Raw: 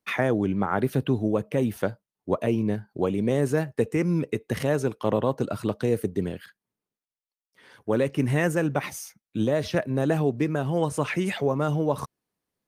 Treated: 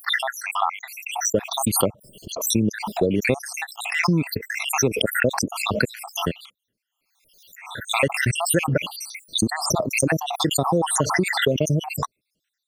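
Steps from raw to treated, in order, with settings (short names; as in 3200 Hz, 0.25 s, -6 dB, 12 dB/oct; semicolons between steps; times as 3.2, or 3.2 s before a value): random spectral dropouts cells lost 75%; compressor 2.5:1, threshold -27 dBFS, peak gain reduction 5.5 dB; bell 2800 Hz +7.5 dB 1.5 oct; backwards sustainer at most 60 dB/s; gain +9 dB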